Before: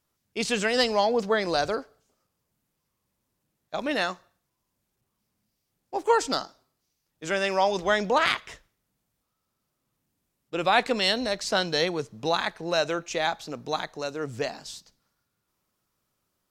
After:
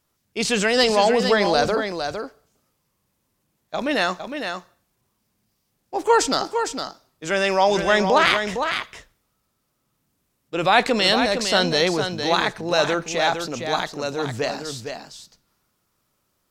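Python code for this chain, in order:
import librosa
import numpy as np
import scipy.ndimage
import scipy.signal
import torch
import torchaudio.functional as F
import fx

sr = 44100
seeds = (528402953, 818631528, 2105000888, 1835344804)

p1 = fx.transient(x, sr, attack_db=-2, sustain_db=4)
p2 = p1 + fx.echo_single(p1, sr, ms=458, db=-7.0, dry=0)
y = p2 * 10.0 ** (5.5 / 20.0)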